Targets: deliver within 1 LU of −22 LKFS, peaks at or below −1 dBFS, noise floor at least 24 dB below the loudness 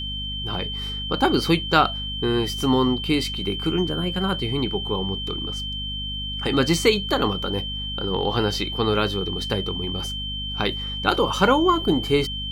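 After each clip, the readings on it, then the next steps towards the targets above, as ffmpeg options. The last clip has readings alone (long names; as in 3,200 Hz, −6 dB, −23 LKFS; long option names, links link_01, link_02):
mains hum 50 Hz; hum harmonics up to 250 Hz; level of the hum −31 dBFS; interfering tone 3,100 Hz; level of the tone −29 dBFS; integrated loudness −23.0 LKFS; sample peak −3.5 dBFS; target loudness −22.0 LKFS
→ -af "bandreject=frequency=50:width_type=h:width=6,bandreject=frequency=100:width_type=h:width=6,bandreject=frequency=150:width_type=h:width=6,bandreject=frequency=200:width_type=h:width=6,bandreject=frequency=250:width_type=h:width=6"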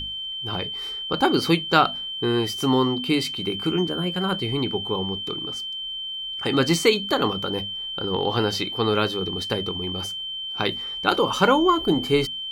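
mains hum none found; interfering tone 3,100 Hz; level of the tone −29 dBFS
→ -af "bandreject=frequency=3100:width=30"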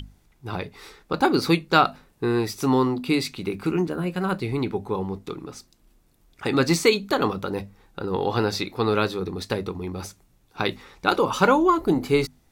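interfering tone none found; integrated loudness −24.0 LKFS; sample peak −3.5 dBFS; target loudness −22.0 LKFS
→ -af "volume=2dB"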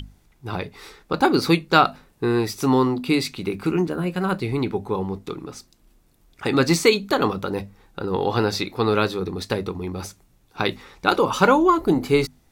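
integrated loudness −22.0 LKFS; sample peak −1.5 dBFS; background noise floor −60 dBFS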